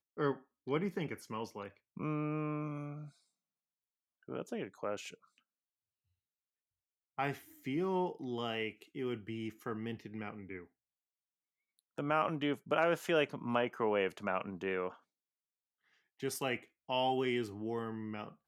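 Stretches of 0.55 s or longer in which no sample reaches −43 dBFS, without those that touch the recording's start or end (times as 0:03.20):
0:03.06–0:04.29
0:05.14–0:07.19
0:10.62–0:11.98
0:14.91–0:16.23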